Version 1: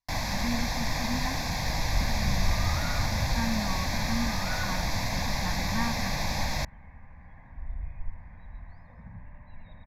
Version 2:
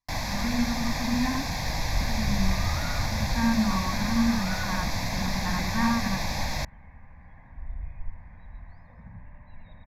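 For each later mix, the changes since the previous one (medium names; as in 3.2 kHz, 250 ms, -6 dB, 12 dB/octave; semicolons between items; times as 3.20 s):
speech: send on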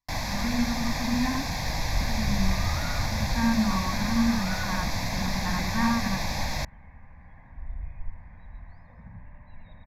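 no change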